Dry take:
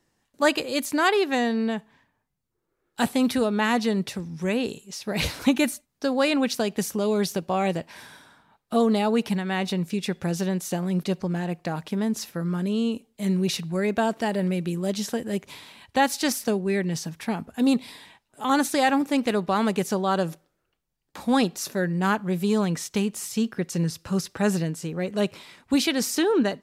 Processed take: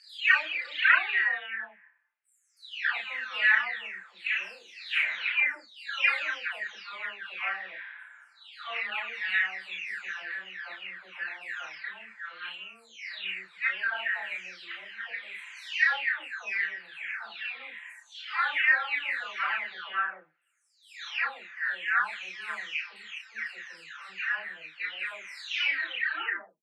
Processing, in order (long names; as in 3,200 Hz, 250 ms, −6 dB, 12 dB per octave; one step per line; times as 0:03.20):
every frequency bin delayed by itself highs early, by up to 739 ms
flat-topped band-pass 2,000 Hz, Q 1.8
double-tracking delay 32 ms −3 dB
level +7.5 dB